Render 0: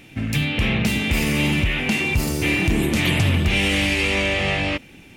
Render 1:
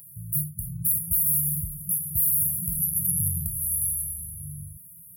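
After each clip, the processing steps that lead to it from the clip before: FFT band-reject 190–10000 Hz; tilt EQ +4.5 dB/octave; peak limiter -16 dBFS, peak gain reduction 11 dB; trim +4 dB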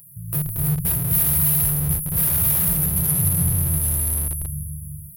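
bass shelf 380 Hz +4 dB; gated-style reverb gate 350 ms rising, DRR -1.5 dB; in parallel at -11 dB: Schmitt trigger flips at -18.5 dBFS

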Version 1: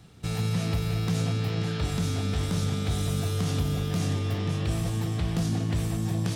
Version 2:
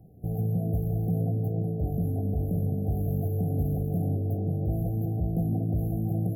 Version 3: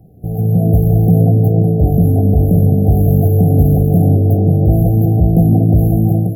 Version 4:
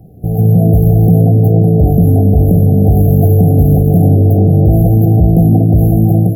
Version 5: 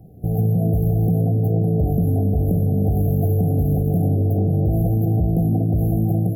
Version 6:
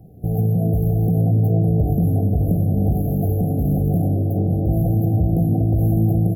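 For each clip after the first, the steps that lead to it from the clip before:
FFT band-reject 790–11000 Hz
level rider gain up to 8.5 dB; trim +8.5 dB
peak limiter -7 dBFS, peak gain reduction 4.5 dB; trim +5.5 dB
compression, threshold -9 dBFS, peak gain reduction 5.5 dB; trim -6 dB
echo from a far wall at 160 m, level -8 dB

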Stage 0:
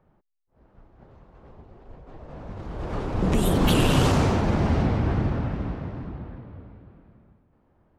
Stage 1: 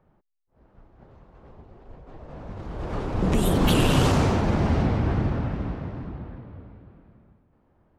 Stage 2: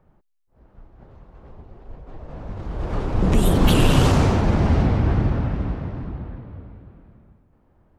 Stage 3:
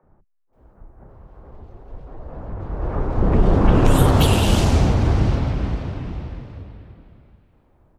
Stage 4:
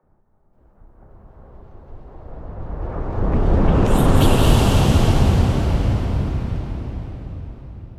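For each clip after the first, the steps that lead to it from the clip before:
no audible change
bass shelf 77 Hz +7 dB; trim +2 dB
three bands offset in time mids, lows, highs 30/530 ms, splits 190/2000 Hz; trim +2.5 dB
reverberation RT60 4.7 s, pre-delay 162 ms, DRR -2 dB; trim -3.5 dB

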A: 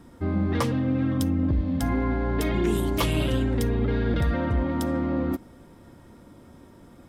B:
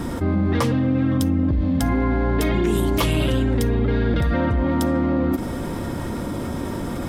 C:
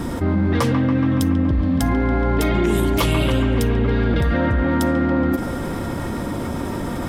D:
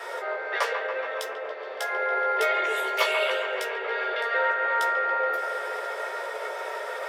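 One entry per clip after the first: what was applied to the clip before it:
level flattener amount 70%; trim +2 dB
feedback echo behind a band-pass 141 ms, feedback 74%, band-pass 1.3 kHz, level -6 dB; trim +1.5 dB
octave divider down 2 oct, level +3 dB; rippled Chebyshev high-pass 400 Hz, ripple 6 dB; reverberation RT60 0.10 s, pre-delay 13 ms, DRR 3 dB; trim -6 dB

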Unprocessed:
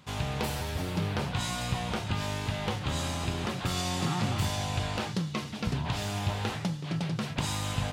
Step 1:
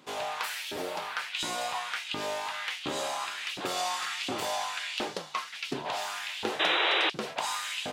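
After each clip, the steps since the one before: LFO high-pass saw up 1.4 Hz 300–3200 Hz; painted sound noise, 6.59–7.10 s, 300–4000 Hz -26 dBFS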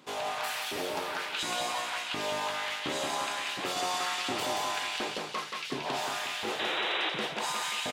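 peak limiter -23 dBFS, peak gain reduction 8.5 dB; feedback delay 178 ms, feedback 48%, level -4.5 dB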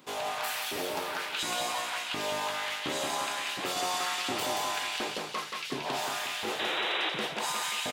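treble shelf 12 kHz +9.5 dB

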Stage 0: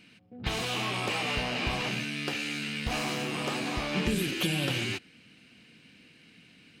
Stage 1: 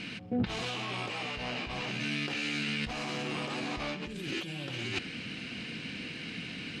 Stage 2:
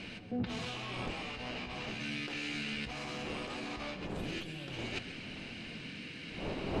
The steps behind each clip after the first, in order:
low-pass 6.5 kHz 12 dB/octave; compressor with a negative ratio -42 dBFS, ratio -1; trim +6.5 dB
wind noise 470 Hz -41 dBFS; reverberation, pre-delay 133 ms, DRR 11.5 dB; trim -5.5 dB

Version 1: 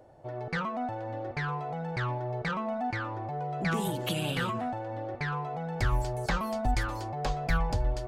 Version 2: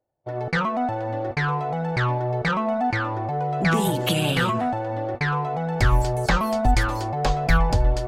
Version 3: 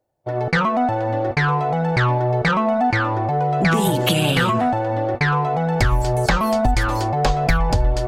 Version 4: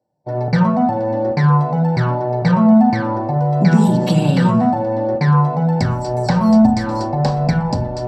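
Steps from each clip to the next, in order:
gate -38 dBFS, range -34 dB; trim +9 dB
compression, threshold -19 dBFS, peak gain reduction 7 dB; trim +6 dB
reverberation RT60 0.40 s, pre-delay 3 ms, DRR 2 dB; trim -9.5 dB

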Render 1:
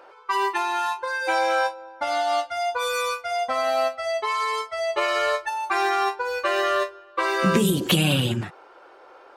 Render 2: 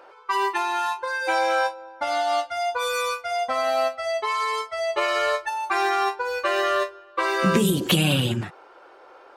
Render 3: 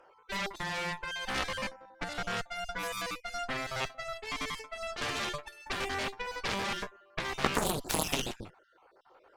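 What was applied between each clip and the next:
no audible change
random holes in the spectrogram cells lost 36%; Chebyshev shaper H 3 -7 dB, 5 -34 dB, 8 -23 dB, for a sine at -9.5 dBFS; trim +1 dB

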